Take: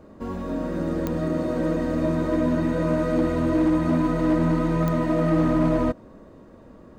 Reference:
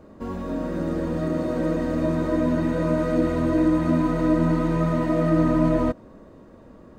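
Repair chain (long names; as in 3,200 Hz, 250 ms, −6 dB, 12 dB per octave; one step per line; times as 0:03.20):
clipped peaks rebuilt −15 dBFS
click removal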